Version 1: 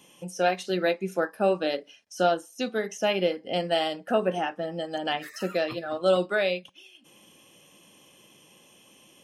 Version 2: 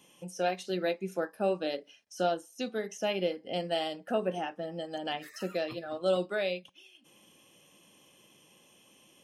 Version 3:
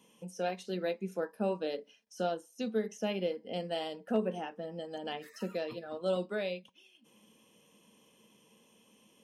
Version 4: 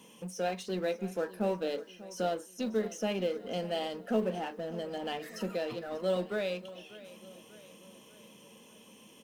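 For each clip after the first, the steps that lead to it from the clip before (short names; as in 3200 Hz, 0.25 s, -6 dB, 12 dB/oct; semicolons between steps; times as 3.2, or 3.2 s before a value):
dynamic EQ 1400 Hz, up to -4 dB, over -39 dBFS, Q 1; gain -5 dB
small resonant body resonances 220/450/960 Hz, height 12 dB, ringing for 80 ms; hard clip -13 dBFS, distortion -43 dB; gain -5.5 dB
G.711 law mismatch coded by mu; feedback echo 0.592 s, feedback 52%, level -17.5 dB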